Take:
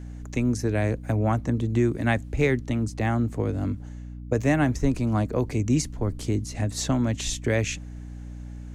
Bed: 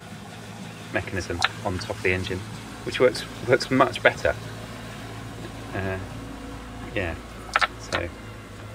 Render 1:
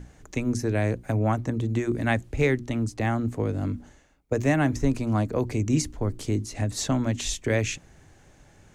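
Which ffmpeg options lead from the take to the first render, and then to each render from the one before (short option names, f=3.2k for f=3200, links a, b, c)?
-af "bandreject=f=60:t=h:w=6,bandreject=f=120:t=h:w=6,bandreject=f=180:t=h:w=6,bandreject=f=240:t=h:w=6,bandreject=f=300:t=h:w=6,bandreject=f=360:t=h:w=6"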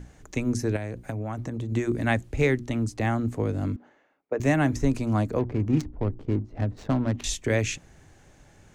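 -filter_complex "[0:a]asettb=1/sr,asplit=3[a][b][c];[a]atrim=end=0.764[d];[b]atrim=start=0.76:end=1.72,asetpts=PTS-STARTPTS,afade=t=in:d=0.004:c=qsin,afade=t=out:st=0.956:d=0.004:c=qsin,acompressor=threshold=-27dB:ratio=10:attack=3.2:release=140:knee=1:detection=peak[e];[c]atrim=start=1.716[f];[d][e]acrossfade=d=0.004:c1=hsin:c2=qsin[g];[g][f]acrossfade=d=0.004:c1=qsin:c2=hsin,asettb=1/sr,asplit=3[h][i][j];[h]atrim=end=3.764[k];[i]atrim=start=3.76:end=4.4,asetpts=PTS-STARTPTS,afade=t=in:d=0.004:c=qsin,afade=t=out:st=0.636:d=0.004:c=qsin,highpass=360,lowpass=2.1k[l];[j]atrim=start=4.396[m];[k][l]acrossfade=d=0.004:c1=hsin:c2=qsin[n];[n][m]acrossfade=d=0.004:c1=qsin:c2=hsin,asettb=1/sr,asplit=3[o][p][q];[o]atrim=end=5.394[r];[p]atrim=start=5.39:end=7.24,asetpts=PTS-STARTPTS,afade=t=in:d=0.004:c=qsin,afade=t=out:st=1.846:d=0.004:c=qsin,adynamicsmooth=sensitivity=3:basefreq=570[s];[q]atrim=start=7.236[t];[r][s]acrossfade=d=0.004:c1=hsin:c2=qsin[u];[u][t]acrossfade=d=0.004:c1=qsin:c2=hsin"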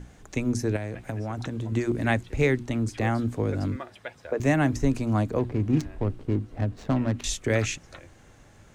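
-filter_complex "[1:a]volume=-20.5dB[a];[0:a][a]amix=inputs=2:normalize=0"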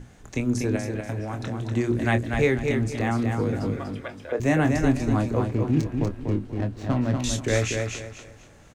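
-filter_complex "[0:a]asplit=2[a][b];[b]adelay=25,volume=-8dB[c];[a][c]amix=inputs=2:normalize=0,aecho=1:1:242|484|726|968:0.562|0.163|0.0473|0.0137"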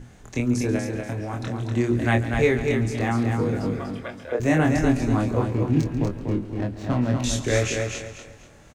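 -filter_complex "[0:a]asplit=2[a][b];[b]adelay=25,volume=-9dB[c];[a][c]amix=inputs=2:normalize=0,aecho=1:1:139:0.158"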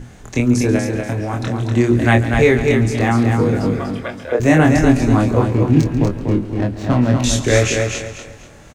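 -af "volume=8dB,alimiter=limit=-1dB:level=0:latency=1"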